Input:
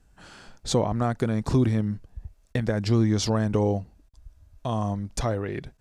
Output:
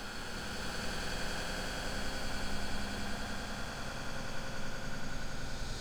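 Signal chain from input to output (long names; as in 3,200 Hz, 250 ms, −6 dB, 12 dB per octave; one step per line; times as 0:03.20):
dead-zone distortion −56 dBFS
extreme stretch with random phases 41×, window 0.25 s, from 0:00.44
echo that builds up and dies away 94 ms, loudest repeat 5, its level −5 dB
level +8 dB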